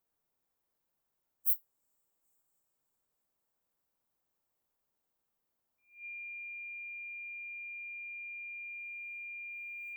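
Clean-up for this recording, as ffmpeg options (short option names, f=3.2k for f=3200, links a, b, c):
-af "bandreject=f=2.4k:w=30"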